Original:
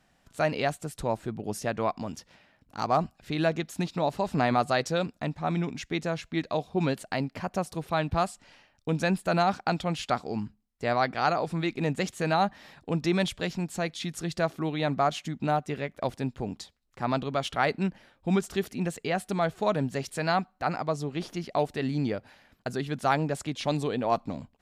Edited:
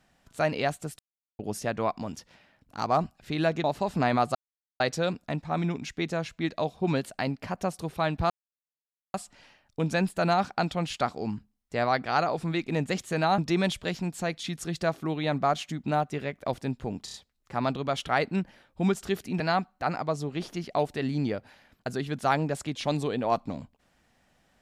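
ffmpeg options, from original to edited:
-filter_complex "[0:a]asplit=11[s0][s1][s2][s3][s4][s5][s6][s7][s8][s9][s10];[s0]atrim=end=0.99,asetpts=PTS-STARTPTS,afade=t=out:st=0.986:d=0.004:c=hsin[s11];[s1]atrim=start=0.99:end=1.39,asetpts=PTS-STARTPTS,volume=0[s12];[s2]atrim=start=1.39:end=3.642,asetpts=PTS-STARTPTS,afade=t=in:d=0.004:c=hsin[s13];[s3]atrim=start=4.018:end=4.73,asetpts=PTS-STARTPTS,afade=t=out:st=0.708:d=0.004:c=hsin,apad=pad_dur=0.45[s14];[s4]atrim=start=4.73:end=8.23,asetpts=PTS-STARTPTS,afade=t=in:d=0.004:c=hsin,afade=t=out:st=3.496:d=0.004:c=hsin,apad=pad_dur=0.84[s15];[s5]atrim=start=8.23:end=12.472,asetpts=PTS-STARTPTS,afade=t=in:d=0.004:c=hsin[s16];[s6]atrim=start=12.938:end=16.642[s17];[s7]atrim=start=16.608:end=16.642[s18];[s8]atrim=start=16.608:end=16.642[s19];[s9]atrim=start=16.608:end=18.872[s20];[s10]atrim=start=20.198[s21];[s11][s12][s13]concat=n=3:v=0:a=1[s22];[s14][s15][s16]concat=n=3:v=0:a=1[s23];[s22][s23]acrossfade=d=0.004:c1=hsin:c2=hsin[s24];[s24][s17]acrossfade=d=0.004:c1=hsin:c2=hsin[s25];[s25][s18]acrossfade=d=0.004:c1=hsin:c2=hsin[s26];[s26][s19]acrossfade=d=0.004:c1=hsin:c2=hsin[s27];[s27][s20]acrossfade=d=0.004:c1=hsin:c2=hsin[s28];[s28][s21]acrossfade=d=0.004:c1=hsin:c2=hsin"

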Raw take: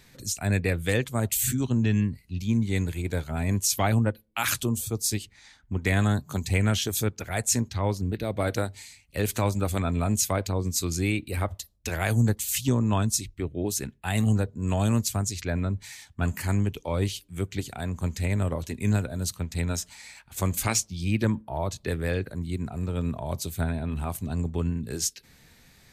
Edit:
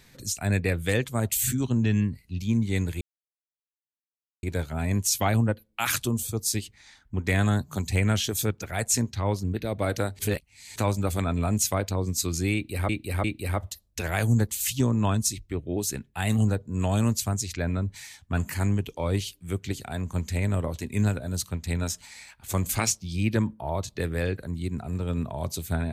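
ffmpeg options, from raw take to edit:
-filter_complex "[0:a]asplit=6[s0][s1][s2][s3][s4][s5];[s0]atrim=end=3.01,asetpts=PTS-STARTPTS,afade=t=out:st=3.006:d=0.004:c=hsin,apad=pad_dur=1.42[s6];[s1]atrim=start=3.01:end=8.772,asetpts=PTS-STARTPTS,afade=t=in:d=0.004:c=hsin[s7];[s2]atrim=start=8.768:end=9.342,asetpts=PTS-STARTPTS,areverse[s8];[s3]atrim=start=9.338:end=11.472[s9];[s4]atrim=start=11.118:end=11.472[s10];[s5]atrim=start=11.118[s11];[s6][s7]concat=n=2:v=0:a=1[s12];[s12][s8]acrossfade=d=0.004:c1=hsin:c2=hsin[s13];[s13][s9]acrossfade=d=0.004:c1=hsin:c2=hsin[s14];[s14][s10]acrossfade=d=0.004:c1=hsin:c2=hsin[s15];[s15][s11]acrossfade=d=0.004:c1=hsin:c2=hsin"

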